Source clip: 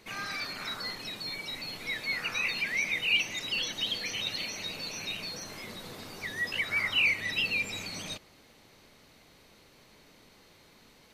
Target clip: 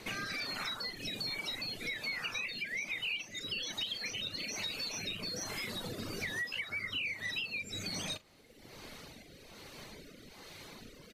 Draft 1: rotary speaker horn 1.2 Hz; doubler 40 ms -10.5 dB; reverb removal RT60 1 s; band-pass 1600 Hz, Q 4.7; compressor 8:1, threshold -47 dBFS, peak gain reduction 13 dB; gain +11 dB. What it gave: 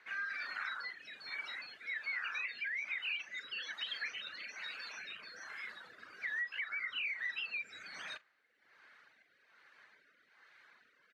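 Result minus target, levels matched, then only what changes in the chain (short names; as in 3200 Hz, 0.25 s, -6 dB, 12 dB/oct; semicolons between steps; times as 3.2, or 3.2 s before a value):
2000 Hz band +3.5 dB
remove: band-pass 1600 Hz, Q 4.7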